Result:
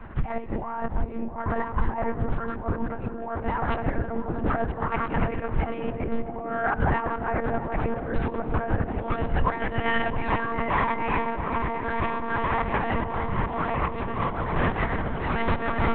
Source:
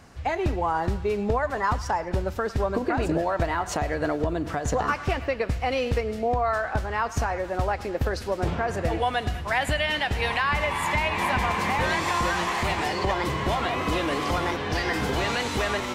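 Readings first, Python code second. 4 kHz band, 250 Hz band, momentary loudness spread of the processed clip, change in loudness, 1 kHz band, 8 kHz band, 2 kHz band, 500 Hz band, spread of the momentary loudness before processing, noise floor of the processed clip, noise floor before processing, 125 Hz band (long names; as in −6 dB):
−12.0 dB, +0.5 dB, 6 LU, −2.0 dB, −1.5 dB, below −40 dB, −3.5 dB, −3.0 dB, 4 LU, −34 dBFS, −36 dBFS, 0.0 dB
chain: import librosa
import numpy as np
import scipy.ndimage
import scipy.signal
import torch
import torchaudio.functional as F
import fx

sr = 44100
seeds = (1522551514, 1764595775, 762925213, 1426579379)

p1 = fx.tracing_dist(x, sr, depth_ms=0.1)
p2 = scipy.signal.sosfilt(scipy.signal.butter(2, 1400.0, 'lowpass', fs=sr, output='sos'), p1)
p3 = fx.over_compress(p2, sr, threshold_db=-31.0, ratio=-0.5)
p4 = fx.peak_eq(p3, sr, hz=470.0, db=-9.0, octaves=1.1)
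p5 = fx.rev_schroeder(p4, sr, rt60_s=2.6, comb_ms=31, drr_db=16.0)
p6 = fx.lpc_monotone(p5, sr, seeds[0], pitch_hz=230.0, order=10)
p7 = p6 + fx.echo_banded(p6, sr, ms=665, feedback_pct=81, hz=340.0, wet_db=-7, dry=0)
y = p7 * librosa.db_to_amplitude(7.5)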